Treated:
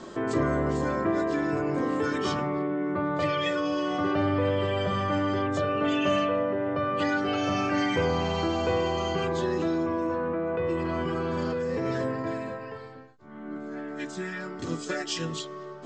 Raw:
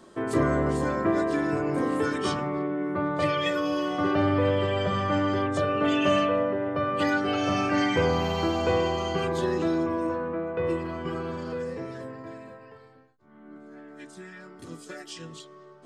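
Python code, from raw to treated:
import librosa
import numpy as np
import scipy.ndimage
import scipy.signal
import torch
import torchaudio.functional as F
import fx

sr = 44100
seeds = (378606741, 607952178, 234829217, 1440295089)

p1 = scipy.signal.sosfilt(scipy.signal.butter(16, 7900.0, 'lowpass', fs=sr, output='sos'), x)
p2 = fx.over_compress(p1, sr, threshold_db=-37.0, ratio=-1.0)
p3 = p1 + F.gain(torch.from_numpy(p2), 1.0).numpy()
y = F.gain(torch.from_numpy(p3), -3.0).numpy()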